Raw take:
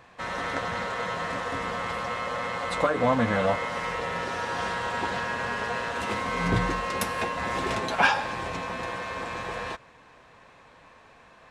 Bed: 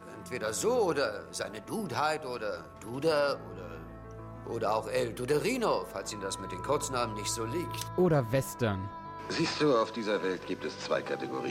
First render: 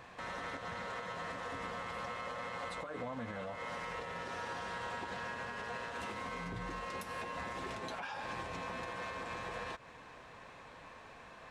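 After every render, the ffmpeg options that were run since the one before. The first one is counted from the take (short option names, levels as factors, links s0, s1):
-af "acompressor=threshold=0.02:ratio=6,alimiter=level_in=2.66:limit=0.0631:level=0:latency=1:release=198,volume=0.376"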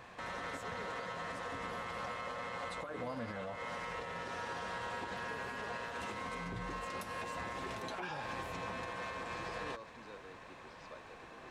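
-filter_complex "[1:a]volume=0.0668[s0];[0:a][s0]amix=inputs=2:normalize=0"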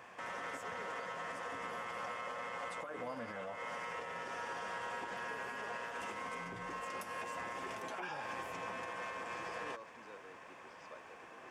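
-af "highpass=f=330:p=1,equalizer=f=4000:w=6.1:g=-13.5"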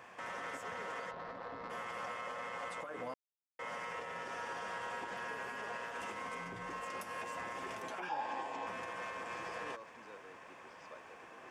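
-filter_complex "[0:a]asplit=3[s0][s1][s2];[s0]afade=t=out:st=1.1:d=0.02[s3];[s1]adynamicsmooth=sensitivity=5:basefreq=660,afade=t=in:st=1.1:d=0.02,afade=t=out:st=1.69:d=0.02[s4];[s2]afade=t=in:st=1.69:d=0.02[s5];[s3][s4][s5]amix=inputs=3:normalize=0,asettb=1/sr,asplit=3[s6][s7][s8];[s6]atrim=end=8.094[s9];[s7]atrim=start=8.09:end=8.67,asetpts=PTS-STARTPTS,afade=t=in:d=0.004:c=qsin,afade=t=out:st=0.576:d=0.004:c=qsin,highpass=170,equalizer=f=170:t=q:w=4:g=-8,equalizer=f=280:t=q:w=4:g=5,equalizer=f=840:t=q:w=4:g=10,equalizer=f=1300:t=q:w=4:g=-6,equalizer=f=2200:t=q:w=4:g=-4,equalizer=f=5900:t=q:w=4:g=-6,lowpass=f=7500:w=0.5412,lowpass=f=7500:w=1.3066[s10];[s8]atrim=start=8.666[s11];[s9][s10]acrossfade=d=0.004:c1=hsin:c2=qsin[s12];[s12][s11]acrossfade=d=0.004:c1=qsin:c2=hsin,asplit=3[s13][s14][s15];[s13]atrim=end=3.14,asetpts=PTS-STARTPTS,afade=t=out:st=3.136:d=0.004:c=hsin[s16];[s14]atrim=start=3.14:end=3.59,asetpts=PTS-STARTPTS,volume=0[s17];[s15]atrim=start=3.59,asetpts=PTS-STARTPTS,afade=t=in:d=0.004:c=hsin[s18];[s16][s17][s18]concat=n=3:v=0:a=1"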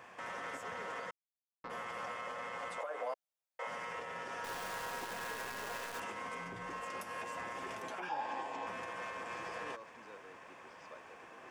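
-filter_complex "[0:a]asettb=1/sr,asplit=3[s0][s1][s2];[s0]atrim=end=2.784[s3];[s1]atrim=start=2.78:end=3.67,asetpts=PTS-STARTPTS,afade=t=in:d=0.004:c=qsin,afade=t=out:st=0.886:d=0.004:c=qsin,highpass=f=600:t=q:w=2.1[s4];[s2]atrim=start=3.666[s5];[s3][s4]acrossfade=d=0.004:c1=hsin:c2=qsin[s6];[s6][s5]acrossfade=d=0.004:c1=qsin:c2=hsin,asettb=1/sr,asplit=3[s7][s8][s9];[s7]atrim=end=4.444[s10];[s8]atrim=start=4.44:end=6,asetpts=PTS-STARTPTS,afade=t=in:d=0.004:c=qsin,afade=t=out:st=1.556:d=0.004:c=qsin,acrusher=bits=8:dc=4:mix=0:aa=0.000001[s11];[s9]atrim=start=5.996[s12];[s10][s11]acrossfade=d=0.004:c1=hsin:c2=qsin[s13];[s13][s12]acrossfade=d=0.004:c1=qsin:c2=hsin,asplit=3[s14][s15][s16];[s14]atrim=end=1.11,asetpts=PTS-STARTPTS,afade=t=out:st=1.106:d=0.004:c=hsin[s17];[s15]atrim=start=1.11:end=1.64,asetpts=PTS-STARTPTS,volume=0[s18];[s16]atrim=start=1.64,asetpts=PTS-STARTPTS,afade=t=in:d=0.004:c=hsin[s19];[s17][s18][s19]concat=n=3:v=0:a=1"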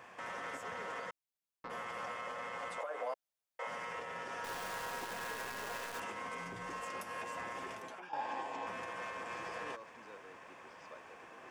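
-filter_complex "[0:a]asettb=1/sr,asplit=3[s0][s1][s2];[s0]atrim=end=6.384[s3];[s1]atrim=start=6.38:end=6.9,asetpts=PTS-STARTPTS,afade=t=in:d=0.004:c=qsin,afade=t=out:st=0.516:d=0.004:c=qsin,bass=f=250:g=0,treble=f=4000:g=4[s4];[s2]atrim=start=6.896[s5];[s3][s4]acrossfade=d=0.004:c1=hsin:c2=qsin[s6];[s6][s5]acrossfade=d=0.004:c1=qsin:c2=hsin,asplit=2[s7][s8];[s7]atrim=end=8.13,asetpts=PTS-STARTPTS,afade=t=out:st=7.58:d=0.55:silence=0.281838[s9];[s8]atrim=start=8.13,asetpts=PTS-STARTPTS,afade=t=in:d=0.004:c=hsin:silence=0.281838[s10];[s9][s10]concat=n=2:v=0:a=1"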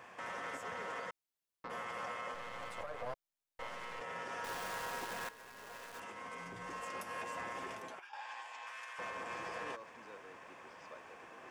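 -filter_complex "[0:a]asettb=1/sr,asplit=3[s0][s1][s2];[s0]atrim=end=2.344[s3];[s1]atrim=start=2.34:end=4.01,asetpts=PTS-STARTPTS,afade=t=in:d=0.004:c=qsin,afade=t=out:st=1.666:d=0.004:c=qsin,aeval=exprs='if(lt(val(0),0),0.251*val(0),val(0))':c=same[s4];[s2]atrim=start=4.006[s5];[s3][s4]acrossfade=d=0.004:c1=hsin:c2=qsin[s6];[s6][s5]acrossfade=d=0.004:c1=qsin:c2=hsin,asettb=1/sr,asplit=3[s7][s8][s9];[s7]atrim=end=7.994[s10];[s8]atrim=start=7.99:end=8.99,asetpts=PTS-STARTPTS,afade=t=in:d=0.004:c=qsin,afade=t=out:st=0.996:d=0.004:c=qsin,highpass=1400[s11];[s9]atrim=start=8.986[s12];[s10][s11]acrossfade=d=0.004:c1=hsin:c2=qsin[s13];[s13][s12]acrossfade=d=0.004:c1=qsin:c2=hsin,asplit=2[s14][s15];[s14]atrim=end=5.29,asetpts=PTS-STARTPTS,afade=t=out:st=5.286:d=0.004:c=hsin:silence=0.177828[s16];[s15]atrim=start=5.29,asetpts=PTS-STARTPTS,afade=t=in:d=1.82:silence=0.177828[s17];[s16][s17]concat=n=2:v=0:a=1"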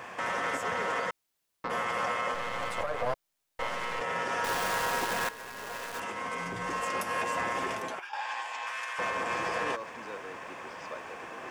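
-af "volume=3.76"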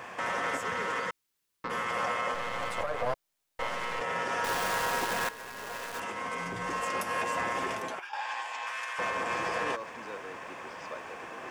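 -filter_complex "[0:a]asettb=1/sr,asplit=3[s0][s1][s2];[s0]atrim=end=0.604[s3];[s1]atrim=start=0.6:end=1.91,asetpts=PTS-STARTPTS,afade=t=in:d=0.004:c=qsin,afade=t=out:st=1.306:d=0.004:c=qsin,equalizer=f=680:t=o:w=0.5:g=-8[s4];[s2]atrim=start=1.906[s5];[s3][s4]acrossfade=d=0.004:c1=hsin:c2=qsin[s6];[s6][s5]acrossfade=d=0.004:c1=qsin:c2=hsin"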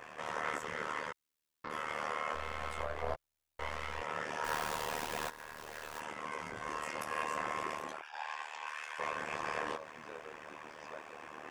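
-af "flanger=delay=16.5:depth=4.2:speed=0.2,tremolo=f=76:d=0.947"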